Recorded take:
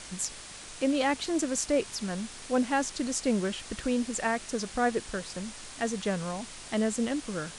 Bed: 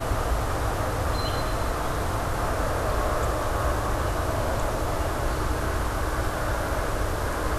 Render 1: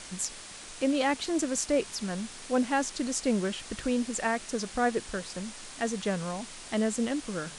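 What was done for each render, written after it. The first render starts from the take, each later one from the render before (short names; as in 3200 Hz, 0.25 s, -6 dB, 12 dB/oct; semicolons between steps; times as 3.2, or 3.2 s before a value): de-hum 50 Hz, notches 3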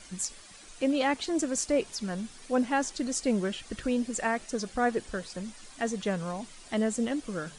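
denoiser 10 dB, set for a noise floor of -45 dBFS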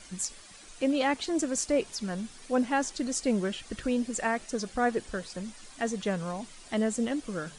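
nothing audible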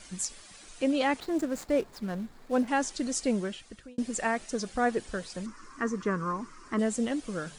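1.2–2.68 median filter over 15 samples; 3.25–3.98 fade out linear; 5.46–6.79 EQ curve 200 Hz 0 dB, 340 Hz +7 dB, 740 Hz -11 dB, 1100 Hz +13 dB, 3600 Hz -15 dB, 5400 Hz -4 dB, 10000 Hz -12 dB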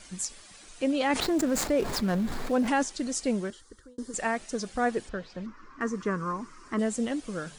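1.1–2.83 fast leveller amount 70%; 3.5–4.14 fixed phaser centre 680 Hz, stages 6; 5.09–5.81 air absorption 200 m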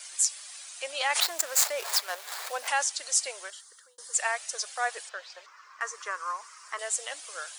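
inverse Chebyshev high-pass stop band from 230 Hz, stop band 50 dB; tilt +3 dB/oct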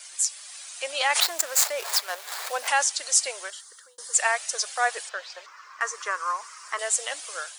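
AGC gain up to 5.5 dB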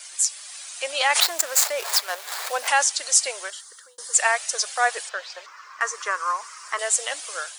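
gain +3 dB; limiter -2 dBFS, peak gain reduction 3 dB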